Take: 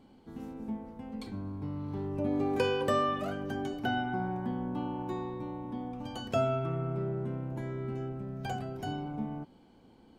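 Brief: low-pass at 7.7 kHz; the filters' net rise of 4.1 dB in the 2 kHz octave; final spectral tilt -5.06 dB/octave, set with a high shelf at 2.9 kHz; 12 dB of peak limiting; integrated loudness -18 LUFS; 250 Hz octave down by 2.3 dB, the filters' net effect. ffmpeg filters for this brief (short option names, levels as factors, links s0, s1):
-af "lowpass=7700,equalizer=f=250:t=o:g=-3,equalizer=f=2000:t=o:g=4.5,highshelf=f=2900:g=4.5,volume=10,alimiter=limit=0.422:level=0:latency=1"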